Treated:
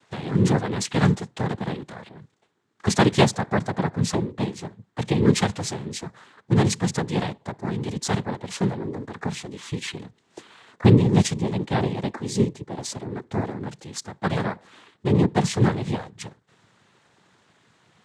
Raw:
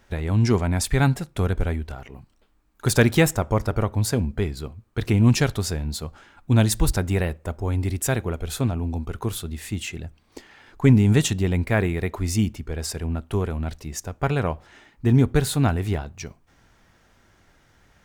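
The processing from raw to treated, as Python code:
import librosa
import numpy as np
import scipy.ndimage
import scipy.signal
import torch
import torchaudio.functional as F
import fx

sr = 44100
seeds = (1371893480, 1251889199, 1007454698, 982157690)

y = fx.peak_eq(x, sr, hz=2400.0, db=-5.5, octaves=1.3, at=(11.02, 13.72))
y = fx.noise_vocoder(y, sr, seeds[0], bands=6)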